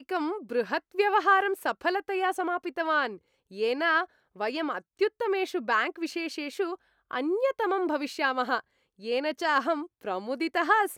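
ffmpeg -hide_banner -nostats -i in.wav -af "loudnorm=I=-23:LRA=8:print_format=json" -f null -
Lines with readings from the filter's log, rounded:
"input_i" : "-28.2",
"input_tp" : "-9.8",
"input_lra" : "3.4",
"input_thresh" : "-38.5",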